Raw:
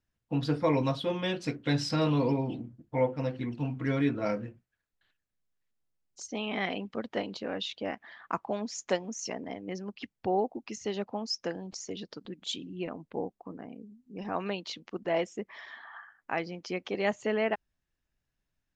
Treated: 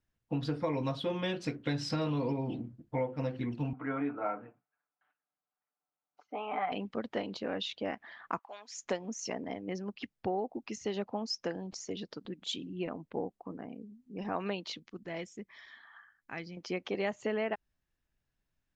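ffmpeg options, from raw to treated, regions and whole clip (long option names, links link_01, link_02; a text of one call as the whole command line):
ffmpeg -i in.wav -filter_complex "[0:a]asettb=1/sr,asplit=3[link_01][link_02][link_03];[link_01]atrim=end=3.734[link_04];[link_02]atrim=start=3.73:end=6.72,asetpts=PTS-STARTPTS,afade=type=in:duration=0.004:curve=qsin,afade=type=out:start_time=2.986:duration=0.004:curve=qsin,highpass=350,equalizer=frequency=370:width_type=q:width=4:gain=-10,equalizer=frequency=540:width_type=q:width=4:gain=-4,equalizer=frequency=770:width_type=q:width=4:gain=8,equalizer=frequency=1300:width_type=q:width=4:gain=6,equalizer=frequency=1800:width_type=q:width=4:gain=-9,lowpass=frequency=2100:width=0.5412,lowpass=frequency=2100:width=1.3066,aecho=1:1:6.8:0.53,atrim=end_sample=131859[link_05];[link_03]atrim=start=6.716[link_06];[link_04][link_05]acrossfade=duration=0.004:curve1=hsin:curve2=qsin[link_07];[link_07][link_06]acrossfade=duration=0.004:curve1=qsin:curve2=hsin,asettb=1/sr,asplit=3[link_08][link_09][link_10];[link_08]atrim=end=8.394[link_11];[link_09]atrim=start=8.39:end=8.83,asetpts=PTS-STARTPTS,afade=type=in:duration=0.004:curve=qsin,afade=type=out:start_time=0.436:duration=0.004:curve=qsin,highpass=1400,equalizer=frequency=4600:width=1.2:gain=-3.5[link_12];[link_10]atrim=start=8.826[link_13];[link_11][link_12]acrossfade=duration=0.004:curve1=hsin:curve2=qsin[link_14];[link_14][link_13]acrossfade=duration=0.004:curve1=qsin:curve2=hsin,asettb=1/sr,asplit=3[link_15][link_16][link_17];[link_15]atrim=end=14.794[link_18];[link_16]atrim=start=14.79:end=16.57,asetpts=PTS-STARTPTS,afade=type=in:duration=0.004:curve=qsin,afade=type=out:start_time=1.776:duration=0.004:curve=qsin,equalizer=frequency=700:width_type=o:width=2.6:gain=-14,bandreject=frequency=2800:width=10[link_19];[link_17]atrim=start=16.566[link_20];[link_18][link_19]acrossfade=duration=0.004:curve1=hsin:curve2=qsin[link_21];[link_21][link_20]acrossfade=duration=0.004:curve1=qsin:curve2=hsin,highshelf=frequency=5400:gain=-5,acompressor=threshold=-29dB:ratio=6" out.wav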